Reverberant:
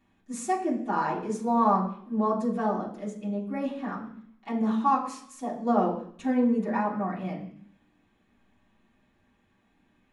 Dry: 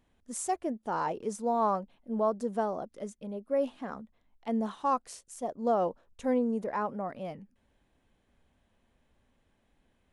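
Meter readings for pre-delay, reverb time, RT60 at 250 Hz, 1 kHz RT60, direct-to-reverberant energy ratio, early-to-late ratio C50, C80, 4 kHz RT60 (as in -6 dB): 3 ms, 0.60 s, 0.75 s, 0.60 s, -7.0 dB, 8.5 dB, 11.5 dB, 0.75 s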